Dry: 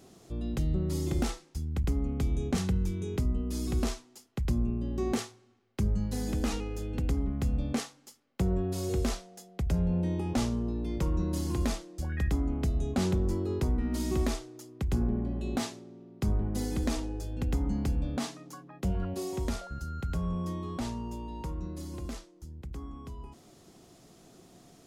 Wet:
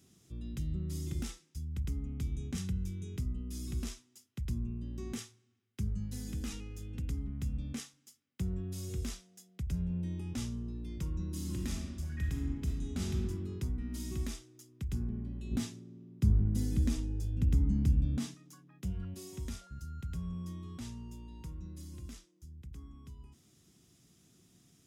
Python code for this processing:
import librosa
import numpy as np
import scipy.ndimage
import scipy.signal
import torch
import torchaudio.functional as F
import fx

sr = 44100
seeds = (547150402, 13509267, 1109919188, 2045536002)

y = fx.reverb_throw(x, sr, start_s=11.25, length_s=1.9, rt60_s=1.5, drr_db=1.0)
y = fx.low_shelf(y, sr, hz=490.0, db=9.5, at=(15.51, 18.34))
y = scipy.signal.sosfilt(scipy.signal.butter(2, 67.0, 'highpass', fs=sr, output='sos'), y)
y = fx.tone_stack(y, sr, knobs='6-0-2')
y = fx.notch(y, sr, hz=4300.0, q=9.8)
y = y * librosa.db_to_amplitude(9.5)